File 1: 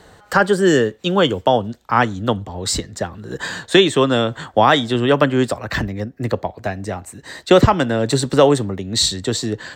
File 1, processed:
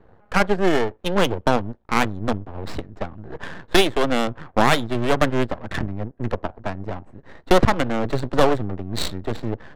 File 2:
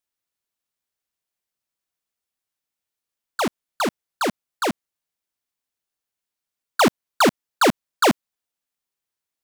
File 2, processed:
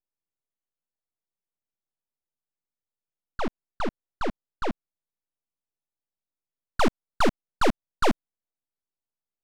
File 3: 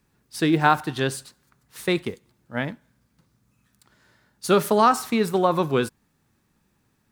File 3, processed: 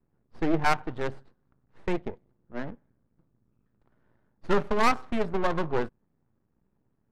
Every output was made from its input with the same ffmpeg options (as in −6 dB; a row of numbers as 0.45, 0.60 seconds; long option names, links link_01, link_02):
-af "aeval=exprs='max(val(0),0)':channel_layout=same,adynamicsmooth=sensitivity=1.5:basefreq=1000"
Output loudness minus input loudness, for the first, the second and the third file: −5.0, −7.0, −6.5 LU